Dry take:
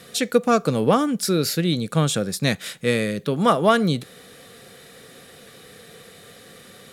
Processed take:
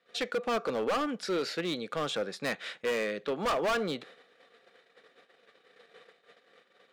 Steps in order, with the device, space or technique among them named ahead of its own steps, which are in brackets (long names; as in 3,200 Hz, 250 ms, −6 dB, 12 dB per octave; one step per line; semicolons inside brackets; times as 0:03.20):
walkie-talkie (band-pass filter 440–3,000 Hz; hard clipping −23.5 dBFS, distortion −5 dB; noise gate −47 dBFS, range −21 dB)
level −2.5 dB